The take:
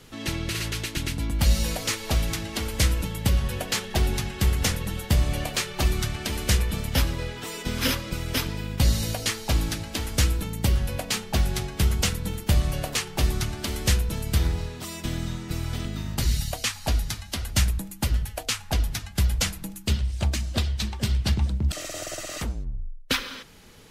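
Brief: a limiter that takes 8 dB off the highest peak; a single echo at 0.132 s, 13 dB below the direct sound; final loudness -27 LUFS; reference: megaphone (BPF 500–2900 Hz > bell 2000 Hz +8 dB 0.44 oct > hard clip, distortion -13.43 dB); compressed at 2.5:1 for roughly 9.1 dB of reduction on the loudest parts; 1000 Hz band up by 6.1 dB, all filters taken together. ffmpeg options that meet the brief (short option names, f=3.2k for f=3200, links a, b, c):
-af "equalizer=f=1k:t=o:g=8,acompressor=threshold=-30dB:ratio=2.5,alimiter=limit=-22.5dB:level=0:latency=1,highpass=500,lowpass=2.9k,equalizer=f=2k:t=o:w=0.44:g=8,aecho=1:1:132:0.224,asoftclip=type=hard:threshold=-32.5dB,volume=12dB"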